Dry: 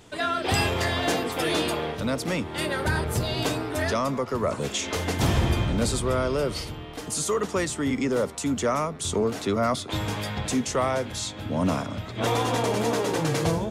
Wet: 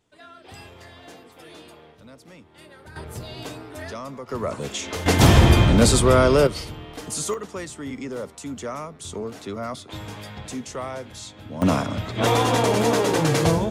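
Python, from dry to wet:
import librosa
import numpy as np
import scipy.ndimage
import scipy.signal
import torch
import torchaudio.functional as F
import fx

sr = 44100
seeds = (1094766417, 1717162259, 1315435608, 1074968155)

y = fx.gain(x, sr, db=fx.steps((0.0, -19.5), (2.96, -9.0), (4.29, -1.5), (5.06, 9.0), (6.47, 0.0), (7.34, -7.0), (11.62, 5.0)))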